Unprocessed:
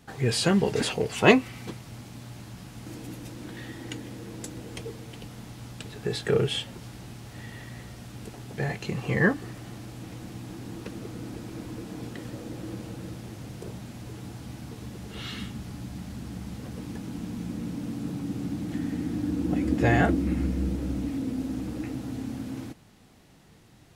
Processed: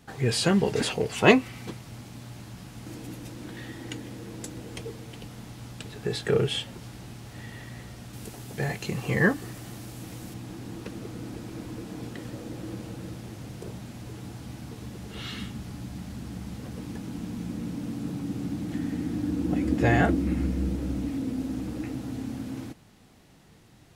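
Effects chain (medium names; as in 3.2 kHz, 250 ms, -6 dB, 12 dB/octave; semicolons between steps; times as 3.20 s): 8.13–10.34 s: treble shelf 7 kHz +10 dB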